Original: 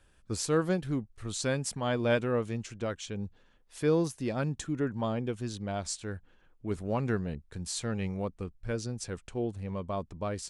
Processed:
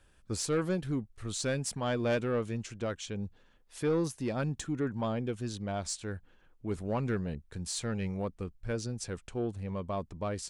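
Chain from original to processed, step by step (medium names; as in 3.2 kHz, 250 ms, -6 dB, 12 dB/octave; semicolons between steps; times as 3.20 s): saturation -22.5 dBFS, distortion -16 dB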